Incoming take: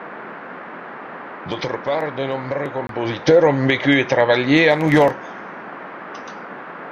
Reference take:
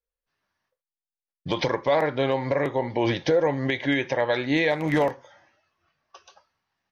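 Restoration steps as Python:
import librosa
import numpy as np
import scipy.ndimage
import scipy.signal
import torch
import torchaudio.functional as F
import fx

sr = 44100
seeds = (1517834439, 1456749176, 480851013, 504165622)

y = fx.fix_interpolate(x, sr, at_s=(2.87,), length_ms=22.0)
y = fx.noise_reduce(y, sr, print_start_s=0.36, print_end_s=0.86, reduce_db=30.0)
y = fx.gain(y, sr, db=fx.steps((0.0, 0.0), (3.27, -8.5)))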